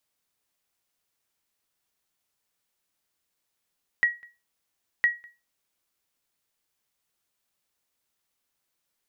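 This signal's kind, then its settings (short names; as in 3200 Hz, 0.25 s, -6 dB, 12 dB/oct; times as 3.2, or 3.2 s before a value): sonar ping 1910 Hz, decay 0.26 s, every 1.01 s, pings 2, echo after 0.20 s, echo -27.5 dB -13.5 dBFS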